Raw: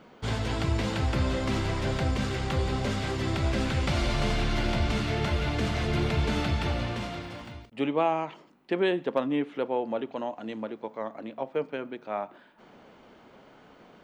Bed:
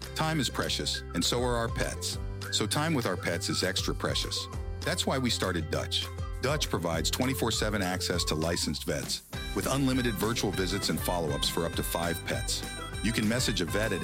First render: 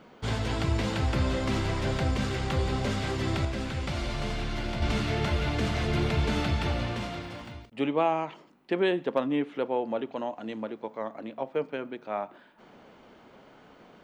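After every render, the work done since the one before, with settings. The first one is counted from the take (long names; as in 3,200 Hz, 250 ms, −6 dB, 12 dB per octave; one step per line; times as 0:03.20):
0:03.45–0:04.82: clip gain −5 dB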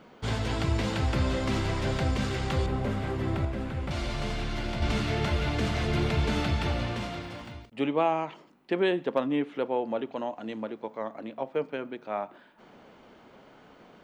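0:02.66–0:03.91: parametric band 5,600 Hz −13 dB 2.2 octaves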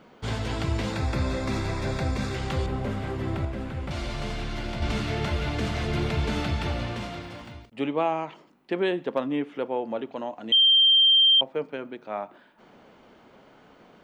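0:00.92–0:02.35: Butterworth band-reject 3,000 Hz, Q 6.1
0:09.33–0:09.92: notch filter 4,000 Hz
0:10.52–0:11.41: beep over 3,160 Hz −14.5 dBFS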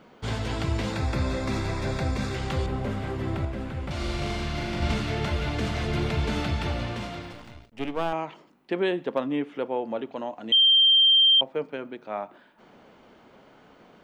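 0:03.96–0:04.94: flutter between parallel walls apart 6.9 metres, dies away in 0.75 s
0:07.32–0:08.13: gain on one half-wave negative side −12 dB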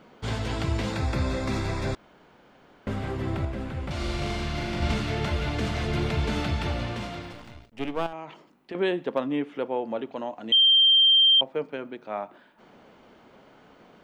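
0:01.95–0:02.87: fill with room tone
0:08.06–0:08.75: downward compressor 3 to 1, threshold −35 dBFS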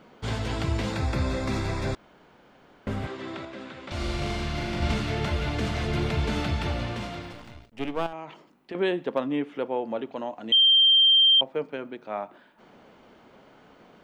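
0:03.07–0:03.92: loudspeaker in its box 330–7,500 Hz, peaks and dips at 460 Hz −5 dB, 780 Hz −6 dB, 3,700 Hz +5 dB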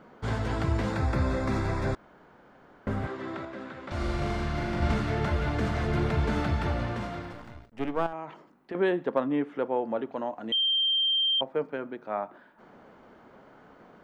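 high shelf with overshoot 2,100 Hz −6 dB, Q 1.5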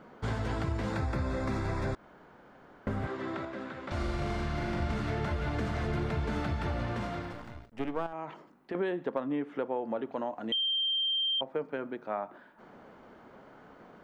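downward compressor 4 to 1, threshold −29 dBFS, peak gain reduction 8 dB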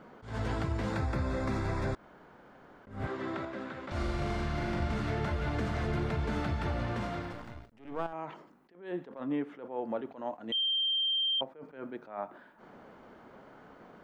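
level that may rise only so fast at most 130 dB per second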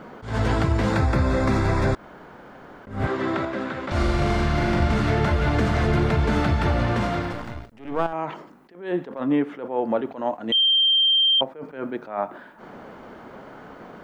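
level +11.5 dB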